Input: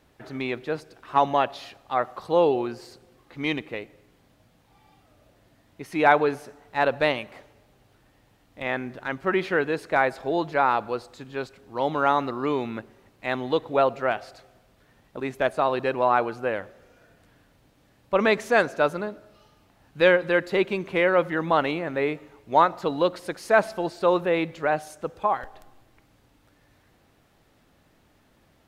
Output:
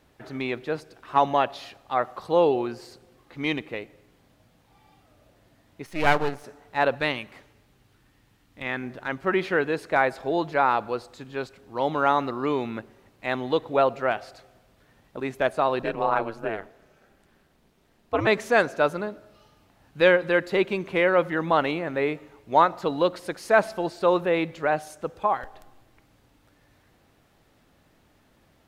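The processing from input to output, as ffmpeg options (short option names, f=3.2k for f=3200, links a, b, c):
-filter_complex "[0:a]asettb=1/sr,asplit=3[a][b][c];[a]atrim=end=5.864[d];[b]atrim=start=5.86:end=6.44,asetpts=PTS-STARTPTS,afade=t=in:d=0.004:c=qsin,afade=t=out:st=0.576:d=0.004:c=qsin,aeval=exprs='max(val(0),0)':c=same[e];[c]atrim=start=6.436[f];[d][e]acrossfade=d=0.004:c1=hsin:c2=qsin[g];[g][f]acrossfade=d=0.004:c1=qsin:c2=hsin,asettb=1/sr,asplit=3[h][i][j];[h]atrim=end=6.954[k];[i]atrim=start=6.95:end=8.83,asetpts=PTS-STARTPTS,afade=t=in:d=0.004:c=qsin,afade=t=out:st=1.876:d=0.004:c=qsin,equalizer=f=620:t=o:w=0.99:g=-8[l];[j]atrim=start=8.826[m];[k][l]acrossfade=d=0.004:c1=hsin:c2=qsin[n];[n][m]acrossfade=d=0.004:c1=qsin:c2=hsin,asettb=1/sr,asplit=3[o][p][q];[o]atrim=end=15.824[r];[p]atrim=start=15.82:end=18.27,asetpts=PTS-STARTPTS,afade=t=in:d=0.004:c=qsin,afade=t=out:st=2.446:d=0.004:c=qsin,aeval=exprs='val(0)*sin(2*PI*110*n/s)':c=same[s];[q]atrim=start=18.266[t];[r][s]acrossfade=d=0.004:c1=hsin:c2=qsin[u];[u][t]acrossfade=d=0.004:c1=qsin:c2=hsin"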